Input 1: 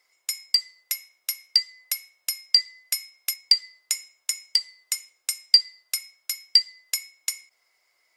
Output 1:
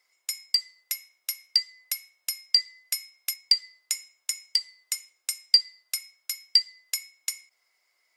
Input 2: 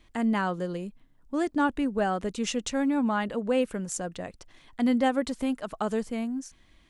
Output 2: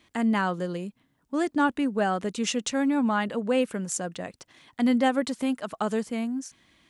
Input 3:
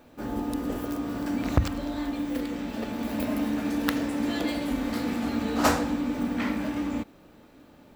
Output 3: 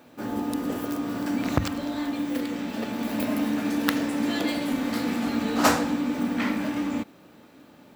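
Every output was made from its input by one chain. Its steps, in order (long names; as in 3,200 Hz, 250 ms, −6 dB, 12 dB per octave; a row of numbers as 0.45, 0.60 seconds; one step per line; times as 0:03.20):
high-pass filter 130 Hz 12 dB per octave
parametric band 480 Hz −2.5 dB 2.1 octaves
loudness normalisation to −27 LKFS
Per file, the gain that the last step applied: −2.5, +3.5, +3.5 decibels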